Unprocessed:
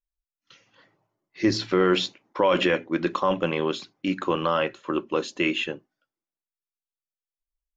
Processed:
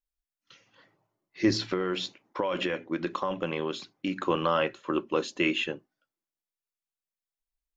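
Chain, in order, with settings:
0:01.60–0:04.16: downward compressor, threshold −24 dBFS, peak gain reduction 8.5 dB
level −2 dB

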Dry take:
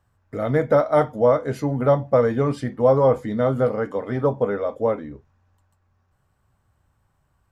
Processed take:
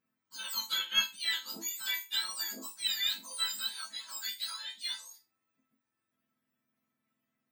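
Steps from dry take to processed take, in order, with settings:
frequency axis turned over on the octave scale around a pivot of 1,400 Hz
resonators tuned to a chord A3 minor, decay 0.22 s
harmonic generator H 2 −24 dB, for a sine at −21 dBFS
level +5.5 dB

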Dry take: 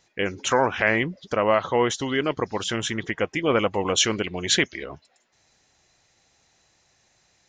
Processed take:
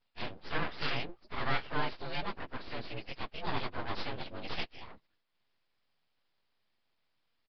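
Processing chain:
partials spread apart or drawn together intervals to 112%
full-wave rectification
downsampling to 11,025 Hz
level −7.5 dB

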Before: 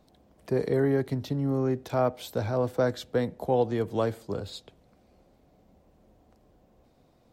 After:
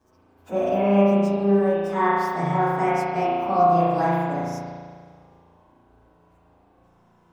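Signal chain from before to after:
phase-vocoder pitch shift without resampling +6.5 semitones
spring reverb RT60 1.8 s, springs 35 ms, chirp 45 ms, DRR −7.5 dB

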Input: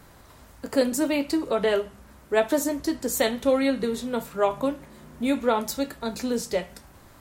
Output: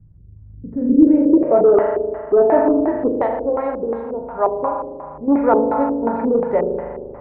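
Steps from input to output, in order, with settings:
0:03.08–0:05.28: graphic EQ with 10 bands 125 Hz −5 dB, 250 Hz −10 dB, 500 Hz −4 dB, 2,000 Hz −7 dB
spring reverb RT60 1.8 s, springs 39 ms, chirp 75 ms, DRR 1.5 dB
auto-filter low-pass square 2.8 Hz 400–2,000 Hz
sine wavefolder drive 4 dB, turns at −5.5 dBFS
low-pass filter sweep 110 Hz → 890 Hz, 0:00.43–0:01.70
level −4 dB

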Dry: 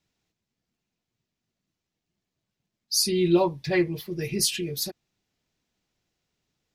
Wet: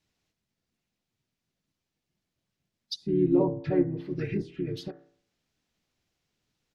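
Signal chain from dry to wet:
hum removal 56.88 Hz, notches 38
treble cut that deepens with the level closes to 690 Hz, closed at −23 dBFS
pitch-shifted copies added −4 semitones −4 dB
level −1.5 dB

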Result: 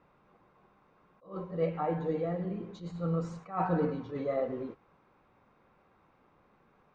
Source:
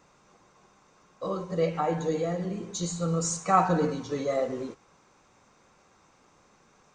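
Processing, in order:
high-frequency loss of the air 420 metres
level that may rise only so fast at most 170 dB per second
level −2.5 dB

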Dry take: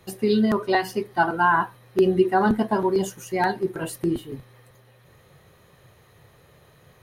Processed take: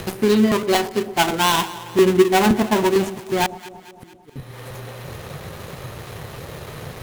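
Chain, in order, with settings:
gap after every zero crossing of 0.25 ms
upward compression, threshold −23 dBFS
0:03.46–0:04.36: gate with flip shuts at −27 dBFS, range −32 dB
delay that swaps between a low-pass and a high-pass 112 ms, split 880 Hz, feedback 72%, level −14 dB
level +4.5 dB

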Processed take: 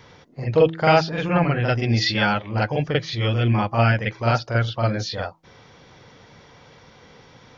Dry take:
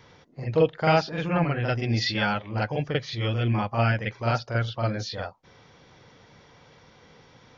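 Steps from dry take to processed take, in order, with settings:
hum removal 162.6 Hz, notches 2
level +5 dB

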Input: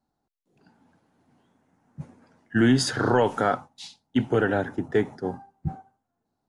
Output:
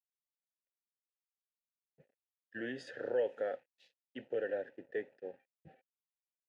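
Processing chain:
dead-zone distortion −47 dBFS
formant filter e
level −4 dB

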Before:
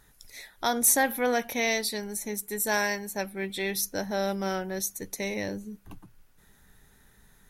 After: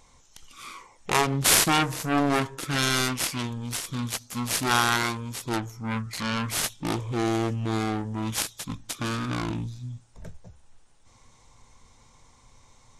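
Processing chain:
phase distortion by the signal itself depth 0.75 ms
wrong playback speed 78 rpm record played at 45 rpm
level +3.5 dB

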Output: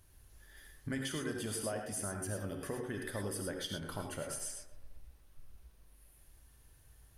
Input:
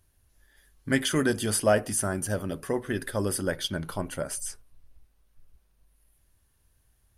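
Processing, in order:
downward compressor 4 to 1, threshold −44 dBFS, peak gain reduction 22 dB
tape delay 129 ms, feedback 55%, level −10.5 dB, low-pass 1,800 Hz
reverb whose tail is shaped and stops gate 130 ms rising, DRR 3 dB
level +3 dB

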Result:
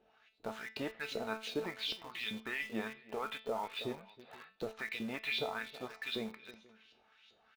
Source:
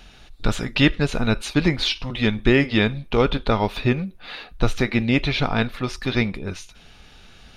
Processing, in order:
auto-filter band-pass saw up 2.6 Hz 400–4,400 Hz
harmonic generator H 2 −25 dB, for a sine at −11.5 dBFS
on a send: single-tap delay 319 ms −19 dB
on the sum: brickwall limiter −21.5 dBFS, peak gain reduction 9.5 dB
tuned comb filter 220 Hz, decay 0.34 s, harmonics all, mix 80%
slap from a distant wall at 83 metres, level −21 dB
in parallel at −9 dB: bit-depth reduction 8 bits, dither none
on the sum: level +2 dB

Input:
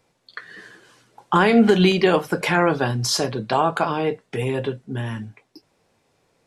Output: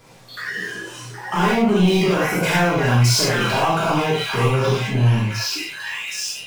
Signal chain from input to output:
echo through a band-pass that steps 768 ms, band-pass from 1,600 Hz, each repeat 0.7 octaves, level −6 dB
downward compressor 2.5 to 1, threshold −21 dBFS, peak gain reduction 8 dB
power curve on the samples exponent 0.5
reverb whose tail is shaped and stops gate 130 ms flat, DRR −6.5 dB
noise reduction from a noise print of the clip's start 8 dB
level −7.5 dB

